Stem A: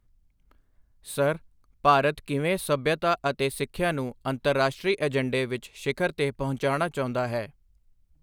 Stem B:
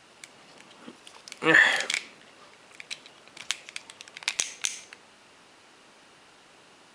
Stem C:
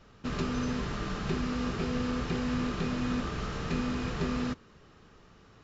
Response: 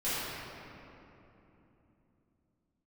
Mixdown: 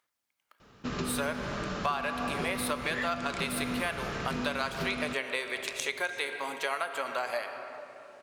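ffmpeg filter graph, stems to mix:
-filter_complex "[0:a]aphaser=in_gain=1:out_gain=1:delay=4.8:decay=0.22:speed=0.38:type=sinusoidal,highpass=890,volume=3dB,asplit=3[a][b][c];[b]volume=-16dB[d];[1:a]adelay=1400,volume=-9dB[e];[2:a]lowshelf=f=72:g=-11.5,adelay=600,volume=1dB[f];[c]apad=whole_len=368210[g];[e][g]sidechaincompress=threshold=-29dB:ratio=8:attack=16:release=128[h];[3:a]atrim=start_sample=2205[i];[d][i]afir=irnorm=-1:irlink=0[j];[a][h][f][j]amix=inputs=4:normalize=0,acompressor=threshold=-28dB:ratio=6"

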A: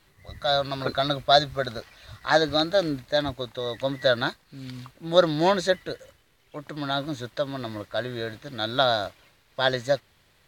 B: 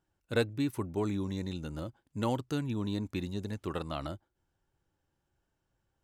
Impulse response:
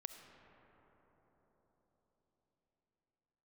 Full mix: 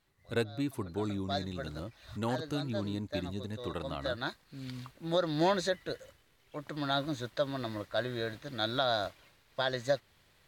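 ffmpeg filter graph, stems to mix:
-filter_complex "[0:a]volume=-4dB,afade=t=in:st=0.83:d=0.69:silence=0.316228[a];[1:a]volume=-2.5dB,asplit=2[b][c];[c]apad=whole_len=461910[d];[a][d]sidechaincompress=threshold=-49dB:ratio=5:attack=46:release=336[e];[e][b]amix=inputs=2:normalize=0,alimiter=limit=-18.5dB:level=0:latency=1:release=225"

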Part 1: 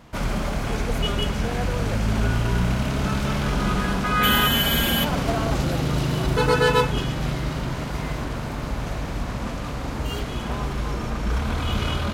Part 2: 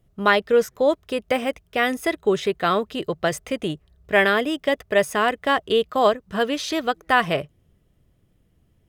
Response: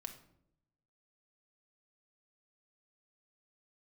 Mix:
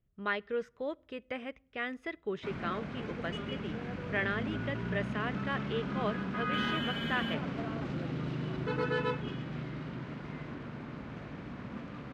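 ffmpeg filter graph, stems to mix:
-filter_complex "[0:a]highpass=180,adelay=2300,volume=-6dB[a];[1:a]lowshelf=f=460:g=-8,volume=-7dB,asplit=2[b][c];[c]volume=-15.5dB[d];[2:a]atrim=start_sample=2205[e];[d][e]afir=irnorm=-1:irlink=0[f];[a][b][f]amix=inputs=3:normalize=0,lowpass=1.9k,equalizer=f=770:w=0.71:g=-11"

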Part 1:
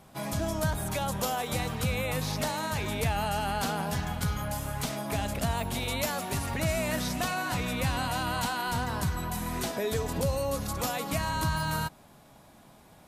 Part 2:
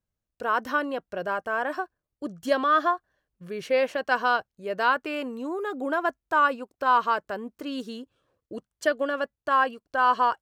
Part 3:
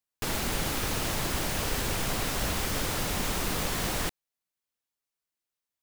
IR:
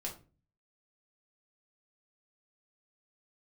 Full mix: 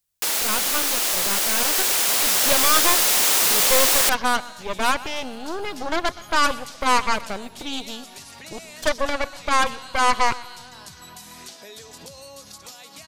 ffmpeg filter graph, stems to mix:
-filter_complex "[0:a]highpass=f=230:p=1,equalizer=f=5.1k:w=0.58:g=14.5,acompressor=threshold=-38dB:ratio=4,adelay=1850,volume=-8.5dB[a];[1:a]equalizer=f=3.5k:t=o:w=0.29:g=14,aeval=exprs='0.355*(cos(1*acos(clip(val(0)/0.355,-1,1)))-cos(1*PI/2))+0.0562*(cos(6*acos(clip(val(0)/0.355,-1,1)))-cos(6*PI/2))+0.126*(cos(8*acos(clip(val(0)/0.355,-1,1)))-cos(8*PI/2))':c=same,volume=-6dB,asplit=2[b][c];[c]volume=-18.5dB[d];[2:a]highpass=450,highshelf=f=3k:g=11.5,volume=2dB[e];[d]aecho=0:1:123|246|369|492|615|738:1|0.42|0.176|0.0741|0.0311|0.0131[f];[a][b][e][f]amix=inputs=4:normalize=0,dynaudnorm=f=240:g=17:m=6dB"

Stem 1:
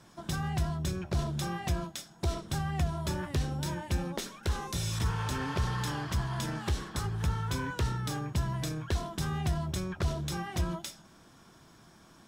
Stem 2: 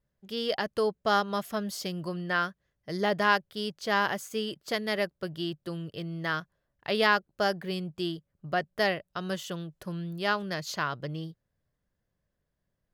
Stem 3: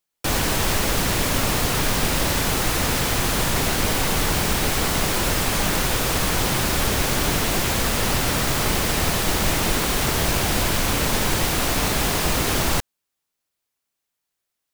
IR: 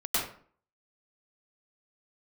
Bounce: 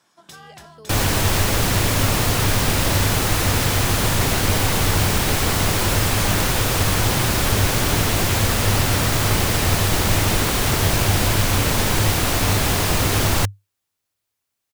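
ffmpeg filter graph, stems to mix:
-filter_complex "[0:a]highpass=f=830:p=1,volume=-2dB[a];[1:a]volume=-19dB[b];[2:a]equalizer=f=100:t=o:w=0.31:g=12.5,adelay=650,volume=1.5dB[c];[a][b][c]amix=inputs=3:normalize=0"

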